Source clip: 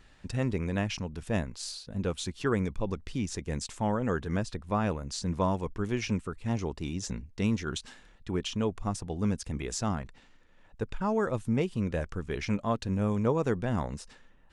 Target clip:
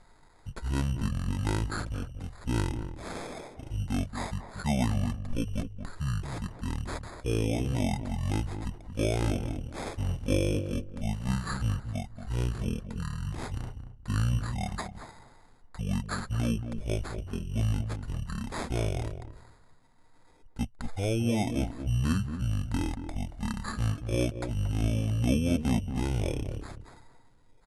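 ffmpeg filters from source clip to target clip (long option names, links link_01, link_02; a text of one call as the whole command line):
ffmpeg -i in.wav -filter_complex "[0:a]acrusher=samples=8:mix=1:aa=0.000001,asetrate=23152,aresample=44100,asplit=2[link_01][link_02];[link_02]adelay=229,lowpass=frequency=950:poles=1,volume=-8dB,asplit=2[link_03][link_04];[link_04]adelay=229,lowpass=frequency=950:poles=1,volume=0.18,asplit=2[link_05][link_06];[link_06]adelay=229,lowpass=frequency=950:poles=1,volume=0.18[link_07];[link_01][link_03][link_05][link_07]amix=inputs=4:normalize=0" out.wav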